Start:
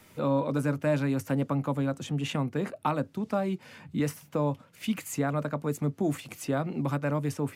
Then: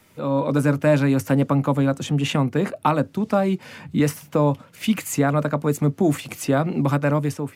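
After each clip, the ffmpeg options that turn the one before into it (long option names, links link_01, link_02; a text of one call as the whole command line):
ffmpeg -i in.wav -af "dynaudnorm=framelen=110:gausssize=7:maxgain=9dB" out.wav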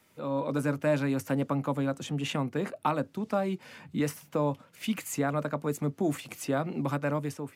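ffmpeg -i in.wav -af "lowshelf=frequency=130:gain=-8,volume=-8dB" out.wav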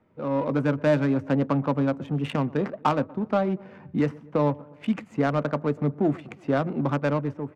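ffmpeg -i in.wav -af "aecho=1:1:120|240|360|480:0.0891|0.0508|0.029|0.0165,adynamicsmooth=sensitivity=2.5:basefreq=1000,volume=5.5dB" out.wav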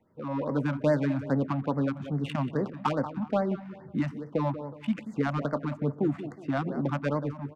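ffmpeg -i in.wav -filter_complex "[0:a]asplit=2[link_01][link_02];[link_02]adelay=184,lowpass=frequency=3500:poles=1,volume=-12dB,asplit=2[link_03][link_04];[link_04]adelay=184,lowpass=frequency=3500:poles=1,volume=0.34,asplit=2[link_05][link_06];[link_06]adelay=184,lowpass=frequency=3500:poles=1,volume=0.34[link_07];[link_01][link_03][link_05][link_07]amix=inputs=4:normalize=0,afftfilt=real='re*(1-between(b*sr/1024,380*pow(3100/380,0.5+0.5*sin(2*PI*2.4*pts/sr))/1.41,380*pow(3100/380,0.5+0.5*sin(2*PI*2.4*pts/sr))*1.41))':imag='im*(1-between(b*sr/1024,380*pow(3100/380,0.5+0.5*sin(2*PI*2.4*pts/sr))/1.41,380*pow(3100/380,0.5+0.5*sin(2*PI*2.4*pts/sr))*1.41))':win_size=1024:overlap=0.75,volume=-3.5dB" out.wav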